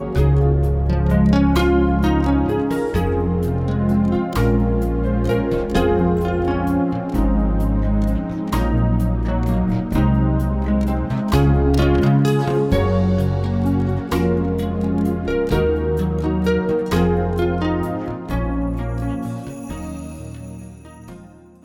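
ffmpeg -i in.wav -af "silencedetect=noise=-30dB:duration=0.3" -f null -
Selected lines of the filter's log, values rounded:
silence_start: 21.17
silence_end: 21.65 | silence_duration: 0.48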